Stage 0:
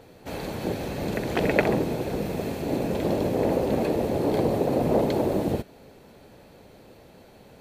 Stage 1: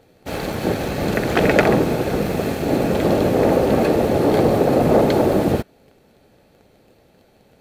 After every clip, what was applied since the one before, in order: dynamic EQ 1300 Hz, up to +6 dB, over -44 dBFS, Q 1.5; sample leveller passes 2; notch 990 Hz, Q 10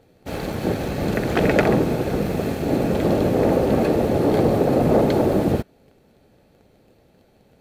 low shelf 420 Hz +4.5 dB; gain -4.5 dB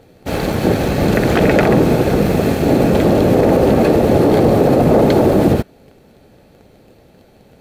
limiter -12.5 dBFS, peak gain reduction 6.5 dB; gain +9 dB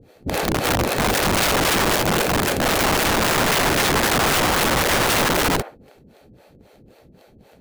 band-limited delay 66 ms, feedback 43%, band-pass 1100 Hz, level -11.5 dB; harmonic tremolo 3.8 Hz, depth 100%, crossover 400 Hz; wrapped overs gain 15 dB; gain +1.5 dB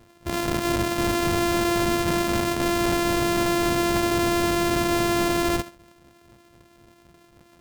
sample sorter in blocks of 128 samples; gain -3.5 dB

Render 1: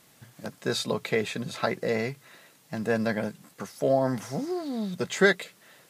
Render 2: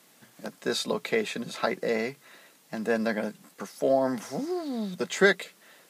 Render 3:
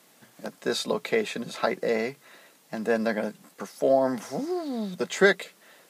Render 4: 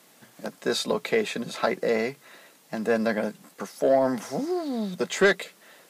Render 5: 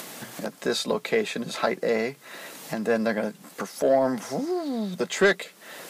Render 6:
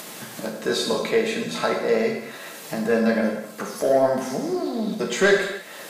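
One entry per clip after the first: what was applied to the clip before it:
HPF 180 Hz 24 dB/oct
bell 620 Hz +2.5 dB 1.7 oct
soft clip -13 dBFS, distortion -18 dB; gain +2 dB
upward compressor, threshold -26 dBFS
non-linear reverb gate 0.33 s falling, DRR 0 dB

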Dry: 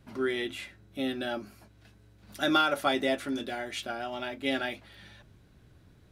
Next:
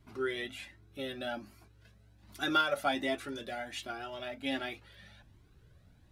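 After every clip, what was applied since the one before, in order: cascading flanger rising 1.3 Hz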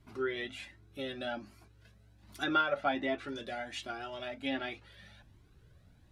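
treble ducked by the level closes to 2700 Hz, closed at -29 dBFS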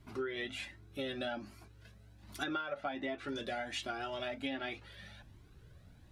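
compressor 16:1, threshold -37 dBFS, peak gain reduction 14.5 dB; gain +3 dB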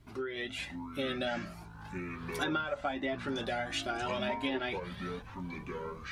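AGC gain up to 4 dB; echoes that change speed 0.471 s, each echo -7 st, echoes 3, each echo -6 dB

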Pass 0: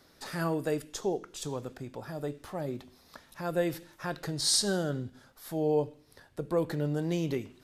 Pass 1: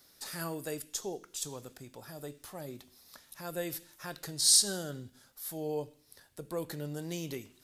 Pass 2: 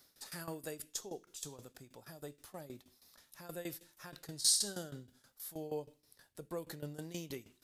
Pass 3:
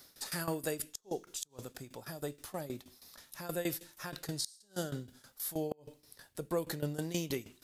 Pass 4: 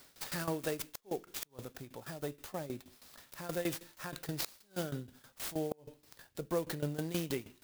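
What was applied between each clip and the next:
pre-emphasis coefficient 0.8; gain +5.5 dB
tremolo saw down 6.3 Hz, depth 85%; gain -2 dB
flipped gate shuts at -29 dBFS, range -36 dB; gain +8 dB
clock jitter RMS 0.037 ms

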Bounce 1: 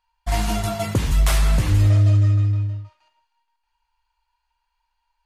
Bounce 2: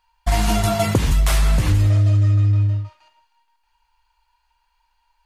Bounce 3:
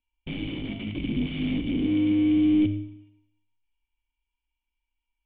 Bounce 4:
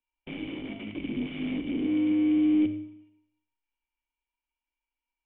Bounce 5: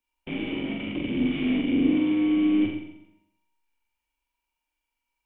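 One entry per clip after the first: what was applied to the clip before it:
compressor, threshold -21 dBFS, peak gain reduction 8.5 dB; gain +7.5 dB
wrapped overs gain 14 dB; vocal tract filter i; Schroeder reverb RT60 0.77 s, combs from 29 ms, DRR 10 dB
three-band isolator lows -14 dB, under 240 Hz, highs -21 dB, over 2900 Hz
flutter echo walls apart 7.5 m, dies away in 0.71 s; gain +4.5 dB

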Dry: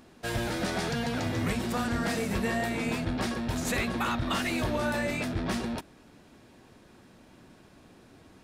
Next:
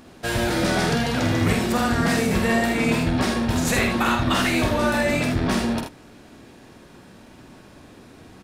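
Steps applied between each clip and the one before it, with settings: early reflections 48 ms -5.5 dB, 79 ms -7 dB; gain +7 dB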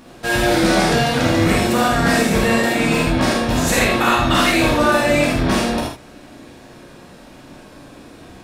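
non-linear reverb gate 0.1 s flat, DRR -2 dB; gain +2 dB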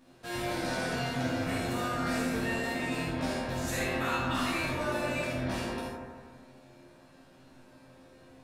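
resonator bank F2 fifth, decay 0.21 s; analogue delay 0.159 s, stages 2048, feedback 53%, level -4 dB; gain -7.5 dB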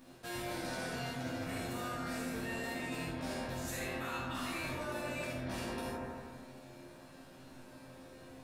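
high shelf 9600 Hz +7.5 dB; reverse; compressor 6:1, threshold -39 dBFS, peak gain reduction 12 dB; reverse; gain +2 dB

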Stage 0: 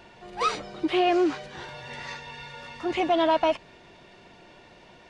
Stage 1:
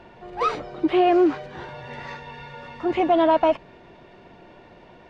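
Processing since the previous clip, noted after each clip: LPF 1200 Hz 6 dB/oct; notches 50/100/150/200 Hz; gain +5.5 dB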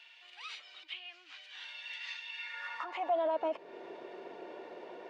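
compressor 2:1, threshold -32 dBFS, peak gain reduction 10 dB; limiter -27 dBFS, peak gain reduction 9.5 dB; high-pass sweep 2900 Hz -> 410 Hz, 2.31–3.41; gain -2 dB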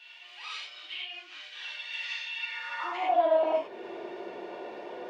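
non-linear reverb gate 0.13 s flat, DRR -5.5 dB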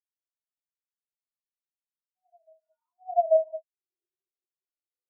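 brick-wall FIR low-pass 1700 Hz; reverse echo 0.839 s -9.5 dB; spectral expander 4:1; gain +2 dB

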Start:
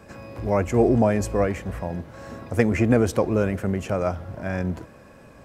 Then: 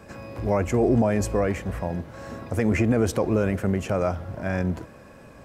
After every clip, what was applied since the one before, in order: limiter -12.5 dBFS, peak gain reduction 8 dB; gain +1 dB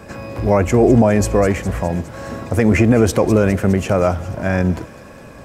thin delay 0.205 s, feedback 65%, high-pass 3500 Hz, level -11 dB; gain +8.5 dB

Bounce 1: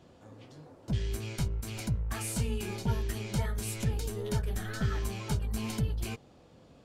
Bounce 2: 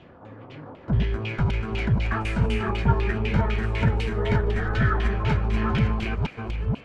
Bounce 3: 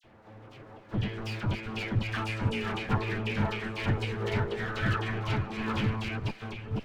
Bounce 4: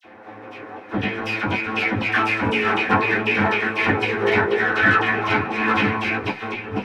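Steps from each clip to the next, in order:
reverse delay 0.482 s, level -3 dB; thin delay 0.149 s, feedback 64%, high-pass 1600 Hz, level -9 dB; LFO low-pass saw down 4 Hz 930–2900 Hz; gain +7.5 dB
minimum comb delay 9.2 ms; dynamic EQ 3200 Hz, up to +4 dB, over -47 dBFS, Q 0.72; dispersion lows, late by 41 ms, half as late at 2100 Hz; gain -5.5 dB
tone controls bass -11 dB, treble -3 dB; reverb RT60 0.15 s, pre-delay 3 ms, DRR -1 dB; gain +6.5 dB

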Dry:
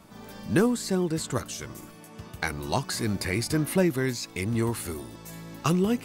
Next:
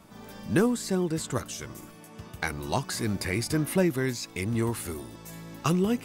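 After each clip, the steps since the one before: notch 4300 Hz, Q 20; gain -1 dB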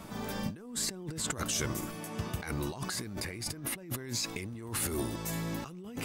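negative-ratio compressor -38 dBFS, ratio -1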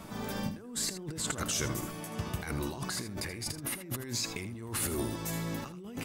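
echo 80 ms -11.5 dB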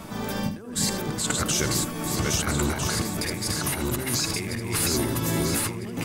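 regenerating reverse delay 0.651 s, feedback 52%, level -1.5 dB; gain +7 dB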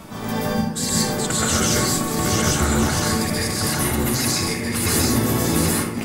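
plate-style reverb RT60 0.6 s, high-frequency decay 0.65×, pre-delay 0.115 s, DRR -5 dB

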